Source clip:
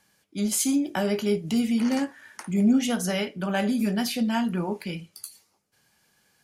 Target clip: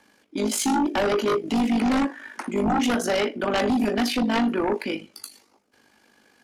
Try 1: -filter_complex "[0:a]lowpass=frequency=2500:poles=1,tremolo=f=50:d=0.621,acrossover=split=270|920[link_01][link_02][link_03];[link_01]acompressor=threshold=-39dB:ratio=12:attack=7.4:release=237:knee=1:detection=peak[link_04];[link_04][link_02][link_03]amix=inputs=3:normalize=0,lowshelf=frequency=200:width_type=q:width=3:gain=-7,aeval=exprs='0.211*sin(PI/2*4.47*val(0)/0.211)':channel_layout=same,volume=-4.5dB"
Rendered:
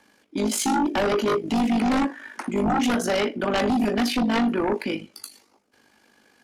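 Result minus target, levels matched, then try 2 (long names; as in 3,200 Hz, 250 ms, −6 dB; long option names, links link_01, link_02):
downward compressor: peak gain reduction −7 dB
-filter_complex "[0:a]lowpass=frequency=2500:poles=1,tremolo=f=50:d=0.621,acrossover=split=270|920[link_01][link_02][link_03];[link_01]acompressor=threshold=-46.5dB:ratio=12:attack=7.4:release=237:knee=1:detection=peak[link_04];[link_04][link_02][link_03]amix=inputs=3:normalize=0,lowshelf=frequency=200:width_type=q:width=3:gain=-7,aeval=exprs='0.211*sin(PI/2*4.47*val(0)/0.211)':channel_layout=same,volume=-4.5dB"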